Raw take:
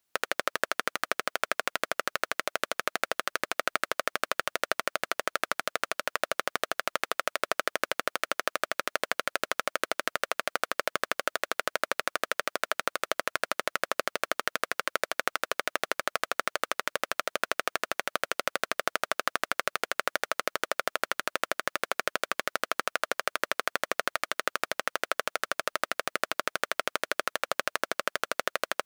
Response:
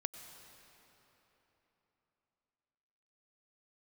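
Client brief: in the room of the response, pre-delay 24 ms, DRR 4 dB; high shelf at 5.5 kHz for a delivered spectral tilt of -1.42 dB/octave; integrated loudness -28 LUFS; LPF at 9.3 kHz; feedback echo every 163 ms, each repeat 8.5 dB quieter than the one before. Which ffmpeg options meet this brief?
-filter_complex "[0:a]lowpass=9300,highshelf=f=5500:g=-7.5,aecho=1:1:163|326|489|652:0.376|0.143|0.0543|0.0206,asplit=2[s0][s1];[1:a]atrim=start_sample=2205,adelay=24[s2];[s1][s2]afir=irnorm=-1:irlink=0,volume=0.708[s3];[s0][s3]amix=inputs=2:normalize=0,volume=1.26"

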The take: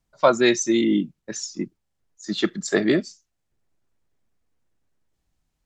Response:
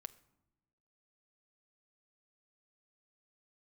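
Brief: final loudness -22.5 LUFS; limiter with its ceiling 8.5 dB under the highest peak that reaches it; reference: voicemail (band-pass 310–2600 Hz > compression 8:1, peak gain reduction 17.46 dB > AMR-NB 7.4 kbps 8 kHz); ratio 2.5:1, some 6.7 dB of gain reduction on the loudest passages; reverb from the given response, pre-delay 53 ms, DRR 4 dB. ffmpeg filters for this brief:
-filter_complex "[0:a]acompressor=threshold=0.0891:ratio=2.5,alimiter=limit=0.141:level=0:latency=1,asplit=2[s0][s1];[1:a]atrim=start_sample=2205,adelay=53[s2];[s1][s2]afir=irnorm=-1:irlink=0,volume=1.12[s3];[s0][s3]amix=inputs=2:normalize=0,highpass=310,lowpass=2600,acompressor=threshold=0.01:ratio=8,volume=14.1" -ar 8000 -c:a libopencore_amrnb -b:a 7400

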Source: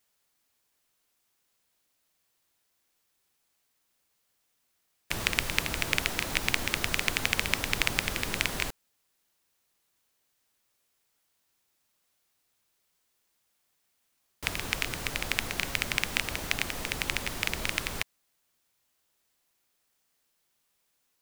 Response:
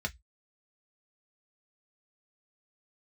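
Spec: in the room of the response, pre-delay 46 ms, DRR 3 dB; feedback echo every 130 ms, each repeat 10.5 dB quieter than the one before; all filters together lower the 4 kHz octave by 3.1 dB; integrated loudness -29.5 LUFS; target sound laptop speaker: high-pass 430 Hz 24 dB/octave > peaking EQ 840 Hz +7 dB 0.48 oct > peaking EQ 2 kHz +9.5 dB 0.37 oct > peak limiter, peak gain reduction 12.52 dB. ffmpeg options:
-filter_complex "[0:a]equalizer=f=4000:t=o:g=-5.5,aecho=1:1:130|260|390:0.299|0.0896|0.0269,asplit=2[s0][s1];[1:a]atrim=start_sample=2205,adelay=46[s2];[s1][s2]afir=irnorm=-1:irlink=0,volume=0.447[s3];[s0][s3]amix=inputs=2:normalize=0,highpass=f=430:w=0.5412,highpass=f=430:w=1.3066,equalizer=f=840:t=o:w=0.48:g=7,equalizer=f=2000:t=o:w=0.37:g=9.5,volume=1.12,alimiter=limit=0.188:level=0:latency=1"

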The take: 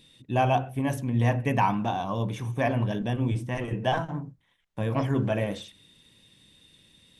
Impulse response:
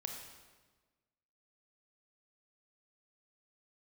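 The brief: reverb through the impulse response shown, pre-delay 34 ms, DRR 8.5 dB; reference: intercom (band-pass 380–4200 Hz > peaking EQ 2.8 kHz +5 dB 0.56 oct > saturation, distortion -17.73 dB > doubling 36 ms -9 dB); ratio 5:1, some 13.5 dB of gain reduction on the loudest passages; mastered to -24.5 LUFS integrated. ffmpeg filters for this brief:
-filter_complex "[0:a]acompressor=threshold=0.02:ratio=5,asplit=2[s0][s1];[1:a]atrim=start_sample=2205,adelay=34[s2];[s1][s2]afir=irnorm=-1:irlink=0,volume=0.422[s3];[s0][s3]amix=inputs=2:normalize=0,highpass=380,lowpass=4200,equalizer=f=2800:t=o:w=0.56:g=5,asoftclip=threshold=0.0299,asplit=2[s4][s5];[s5]adelay=36,volume=0.355[s6];[s4][s6]amix=inputs=2:normalize=0,volume=7.5"

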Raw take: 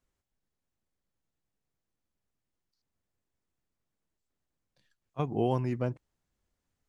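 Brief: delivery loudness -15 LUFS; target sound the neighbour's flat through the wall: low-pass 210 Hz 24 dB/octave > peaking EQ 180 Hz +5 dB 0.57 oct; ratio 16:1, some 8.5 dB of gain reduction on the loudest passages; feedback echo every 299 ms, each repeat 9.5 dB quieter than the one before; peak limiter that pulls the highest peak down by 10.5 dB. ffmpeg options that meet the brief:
-af "acompressor=threshold=0.0316:ratio=16,alimiter=level_in=1.88:limit=0.0631:level=0:latency=1,volume=0.531,lowpass=f=210:w=0.5412,lowpass=f=210:w=1.3066,equalizer=f=180:t=o:w=0.57:g=5,aecho=1:1:299|598|897|1196:0.335|0.111|0.0365|0.012,volume=29.9"

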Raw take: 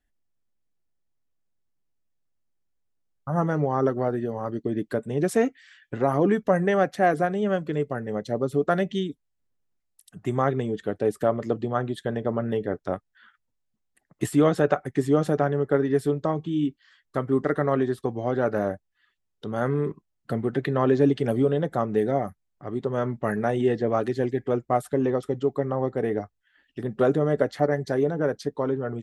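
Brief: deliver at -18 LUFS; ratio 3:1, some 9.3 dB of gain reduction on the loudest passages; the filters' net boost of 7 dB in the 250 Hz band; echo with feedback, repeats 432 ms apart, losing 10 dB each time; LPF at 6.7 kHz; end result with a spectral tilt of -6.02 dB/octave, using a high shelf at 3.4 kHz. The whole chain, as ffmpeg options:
-af "lowpass=6700,equalizer=f=250:t=o:g=8.5,highshelf=f=3400:g=7.5,acompressor=threshold=0.0794:ratio=3,aecho=1:1:432|864|1296|1728:0.316|0.101|0.0324|0.0104,volume=2.66"

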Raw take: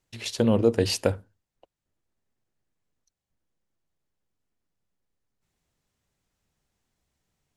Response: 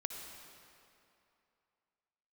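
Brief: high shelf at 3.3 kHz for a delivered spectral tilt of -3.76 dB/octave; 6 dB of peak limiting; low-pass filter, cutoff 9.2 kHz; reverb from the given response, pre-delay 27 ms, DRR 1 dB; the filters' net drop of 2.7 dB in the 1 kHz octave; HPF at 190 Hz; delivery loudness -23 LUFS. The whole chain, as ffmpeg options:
-filter_complex "[0:a]highpass=190,lowpass=9200,equalizer=f=1000:t=o:g=-4,highshelf=f=3300:g=3.5,alimiter=limit=0.211:level=0:latency=1,asplit=2[s0][s1];[1:a]atrim=start_sample=2205,adelay=27[s2];[s1][s2]afir=irnorm=-1:irlink=0,volume=0.891[s3];[s0][s3]amix=inputs=2:normalize=0,volume=1.33"

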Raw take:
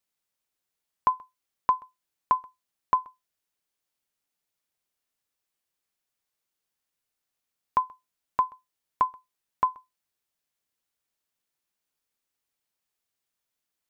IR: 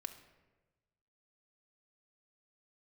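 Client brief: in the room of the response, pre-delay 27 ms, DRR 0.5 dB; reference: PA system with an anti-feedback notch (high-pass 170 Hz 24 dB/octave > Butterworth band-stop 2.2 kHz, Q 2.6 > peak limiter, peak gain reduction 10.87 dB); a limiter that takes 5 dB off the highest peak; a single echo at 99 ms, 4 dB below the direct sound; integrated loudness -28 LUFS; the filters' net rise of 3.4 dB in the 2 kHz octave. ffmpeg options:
-filter_complex "[0:a]equalizer=f=2000:t=o:g=7,alimiter=limit=0.2:level=0:latency=1,aecho=1:1:99:0.631,asplit=2[s0][s1];[1:a]atrim=start_sample=2205,adelay=27[s2];[s1][s2]afir=irnorm=-1:irlink=0,volume=1.33[s3];[s0][s3]amix=inputs=2:normalize=0,highpass=f=170:w=0.5412,highpass=f=170:w=1.3066,asuperstop=centerf=2200:order=8:qfactor=2.6,volume=2.51,alimiter=limit=0.141:level=0:latency=1"

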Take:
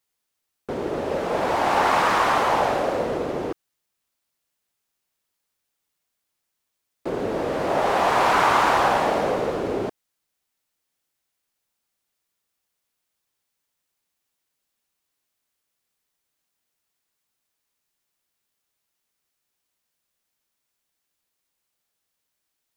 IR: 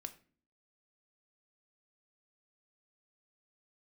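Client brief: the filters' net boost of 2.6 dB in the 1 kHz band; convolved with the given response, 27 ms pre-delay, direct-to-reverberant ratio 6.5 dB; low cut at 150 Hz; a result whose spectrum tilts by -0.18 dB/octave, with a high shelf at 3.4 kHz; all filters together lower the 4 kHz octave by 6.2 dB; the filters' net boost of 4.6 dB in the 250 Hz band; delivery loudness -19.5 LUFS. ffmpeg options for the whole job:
-filter_complex "[0:a]highpass=150,equalizer=f=250:t=o:g=6.5,equalizer=f=1000:t=o:g=3.5,highshelf=f=3400:g=-5.5,equalizer=f=4000:t=o:g=-5,asplit=2[s0][s1];[1:a]atrim=start_sample=2205,adelay=27[s2];[s1][s2]afir=irnorm=-1:irlink=0,volume=0.75[s3];[s0][s3]amix=inputs=2:normalize=0,volume=0.944"

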